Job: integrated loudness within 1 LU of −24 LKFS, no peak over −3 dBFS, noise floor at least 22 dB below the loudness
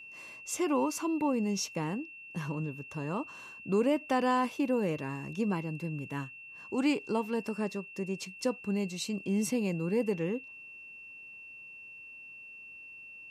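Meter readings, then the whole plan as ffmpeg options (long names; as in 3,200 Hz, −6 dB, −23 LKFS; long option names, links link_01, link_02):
interfering tone 2,700 Hz; level of the tone −46 dBFS; integrated loudness −32.5 LKFS; sample peak −18.0 dBFS; target loudness −24.0 LKFS
→ -af "bandreject=frequency=2700:width=30"
-af "volume=8.5dB"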